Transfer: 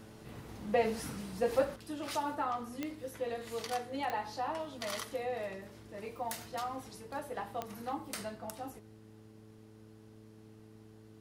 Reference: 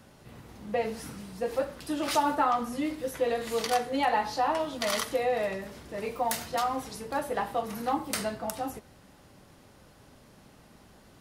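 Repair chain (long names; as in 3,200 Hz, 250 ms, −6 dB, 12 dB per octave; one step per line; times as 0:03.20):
click removal
hum removal 108.7 Hz, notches 4
level 0 dB, from 0:01.76 +9.5 dB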